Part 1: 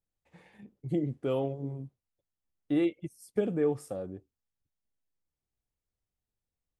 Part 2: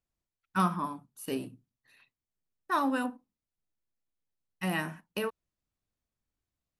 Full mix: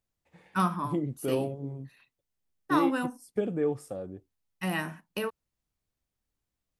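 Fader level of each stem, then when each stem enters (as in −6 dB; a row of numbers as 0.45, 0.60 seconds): −0.5, +0.5 decibels; 0.00, 0.00 seconds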